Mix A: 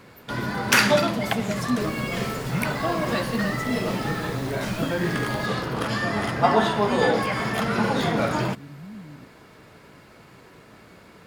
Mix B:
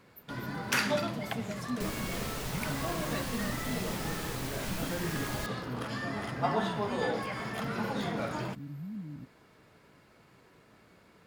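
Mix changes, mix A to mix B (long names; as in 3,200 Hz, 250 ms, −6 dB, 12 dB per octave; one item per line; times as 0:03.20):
first sound −11.0 dB
second sound +4.0 dB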